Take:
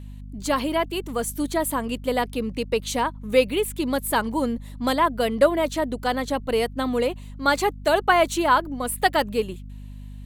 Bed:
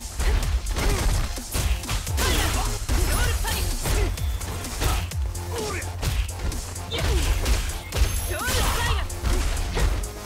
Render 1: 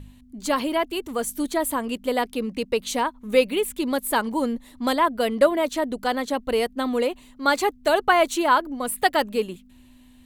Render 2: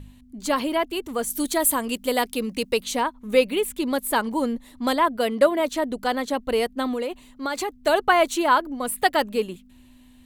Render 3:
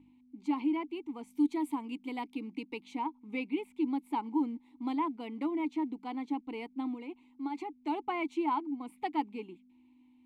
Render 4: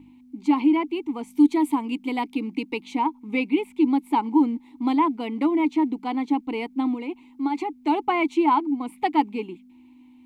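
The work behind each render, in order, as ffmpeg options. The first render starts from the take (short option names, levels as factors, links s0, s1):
-af "bandreject=f=50:t=h:w=4,bandreject=f=100:t=h:w=4,bandreject=f=150:t=h:w=4,bandreject=f=200:t=h:w=4"
-filter_complex "[0:a]asettb=1/sr,asplit=3[s0][s1][s2];[s0]atrim=end=1.304[s3];[s1]atrim=start=1.3:end=2.83,asetpts=PTS-STARTPTS,afade=t=in:d=0.004:c=qsin,afade=t=out:st=1.526:d=0.004:c=qsin,highshelf=f=3700:g=10[s4];[s2]atrim=start=2.826[s5];[s3][s4]acrossfade=d=0.004:c1=hsin:c2=qsin[s6];[s6][s5]acrossfade=d=0.004:c1=qsin:c2=hsin,asettb=1/sr,asplit=3[s7][s8][s9];[s7]atrim=end=5.174[s10];[s8]atrim=start=5.17:end=5.6,asetpts=PTS-STARTPTS,afade=t=in:d=0.004:c=qsin,afade=t=out:st=0.426:d=0.004:c=qsin,highpass=f=98:p=1[s11];[s9]atrim=start=5.596[s12];[s10][s11]acrossfade=d=0.004:c1=hsin:c2=qsin[s13];[s13][s12]acrossfade=d=0.004:c1=qsin:c2=hsin,asettb=1/sr,asplit=3[s14][s15][s16];[s14]atrim=end=6.864[s17];[s15]atrim=start=6.86:end=7.74,asetpts=PTS-STARTPTS,afade=t=in:d=0.004:c=qsin,afade=t=out:st=0.876:d=0.004:c=qsin,acompressor=threshold=0.0708:ratio=6:attack=3.2:release=140:knee=1:detection=peak[s18];[s16]atrim=start=7.736[s19];[s17][s18]acrossfade=d=0.004:c1=hsin:c2=qsin[s20];[s20][s19]acrossfade=d=0.004:c1=qsin:c2=hsin"
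-filter_complex "[0:a]acrusher=bits=8:mode=log:mix=0:aa=0.000001,asplit=3[s0][s1][s2];[s0]bandpass=f=300:t=q:w=8,volume=1[s3];[s1]bandpass=f=870:t=q:w=8,volume=0.501[s4];[s2]bandpass=f=2240:t=q:w=8,volume=0.355[s5];[s3][s4][s5]amix=inputs=3:normalize=0"
-af "volume=3.76"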